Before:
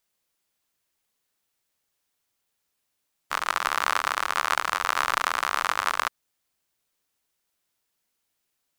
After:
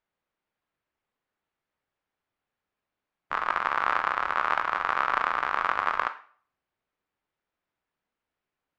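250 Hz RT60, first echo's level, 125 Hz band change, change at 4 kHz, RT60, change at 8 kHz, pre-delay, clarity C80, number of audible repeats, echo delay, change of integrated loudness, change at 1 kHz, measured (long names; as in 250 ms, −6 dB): 0.45 s, no echo audible, can't be measured, −10.5 dB, 0.50 s, below −20 dB, 14 ms, 17.5 dB, no echo audible, no echo audible, −1.0 dB, 0.0 dB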